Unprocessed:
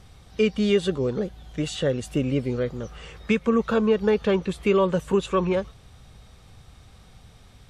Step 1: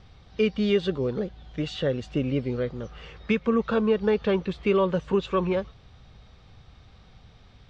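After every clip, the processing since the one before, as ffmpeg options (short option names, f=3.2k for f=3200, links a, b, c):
-af "lowpass=f=5.1k:w=0.5412,lowpass=f=5.1k:w=1.3066,volume=-2dB"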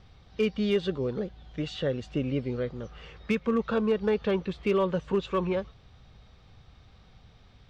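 -af "asoftclip=type=hard:threshold=-15dB,volume=-3dB"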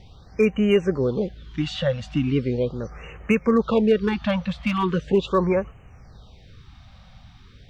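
-af "afftfilt=real='re*(1-between(b*sr/1024,350*pow(4400/350,0.5+0.5*sin(2*PI*0.39*pts/sr))/1.41,350*pow(4400/350,0.5+0.5*sin(2*PI*0.39*pts/sr))*1.41))':imag='im*(1-between(b*sr/1024,350*pow(4400/350,0.5+0.5*sin(2*PI*0.39*pts/sr))/1.41,350*pow(4400/350,0.5+0.5*sin(2*PI*0.39*pts/sr))*1.41))':win_size=1024:overlap=0.75,volume=7.5dB"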